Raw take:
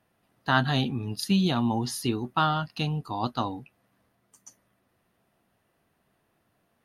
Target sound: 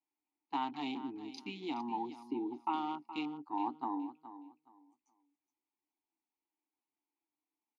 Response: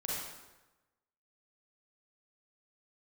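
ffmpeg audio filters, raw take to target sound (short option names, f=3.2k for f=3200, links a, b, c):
-filter_complex "[0:a]afwtdn=0.0158,acompressor=threshold=-25dB:ratio=2.5,asplit=3[a][b][c];[a]bandpass=f=300:t=q:w=8,volume=0dB[d];[b]bandpass=f=870:t=q:w=8,volume=-6dB[e];[c]bandpass=f=2.24k:t=q:w=8,volume=-9dB[f];[d][e][f]amix=inputs=3:normalize=0,bass=f=250:g=-15,treble=f=4k:g=6,atempo=0.88,highpass=120,equalizer=f=170:t=o:w=0.31:g=-8,aecho=1:1:420|840|1260:0.211|0.0465|0.0102,volume=7dB"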